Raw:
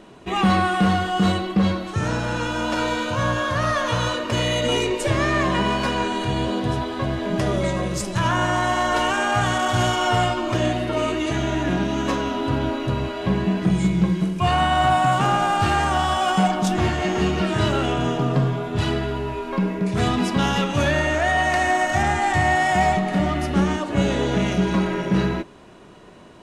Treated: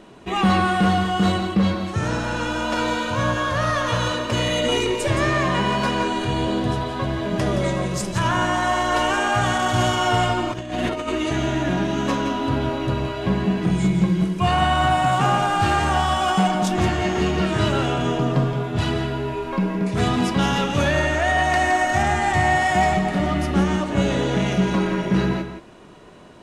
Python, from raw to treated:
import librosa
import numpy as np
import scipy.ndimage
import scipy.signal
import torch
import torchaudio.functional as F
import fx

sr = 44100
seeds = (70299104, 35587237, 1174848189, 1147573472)

y = x + 10.0 ** (-9.5 / 20.0) * np.pad(x, (int(170 * sr / 1000.0), 0))[:len(x)]
y = fx.over_compress(y, sr, threshold_db=-26.0, ratio=-0.5, at=(10.51, 11.07), fade=0.02)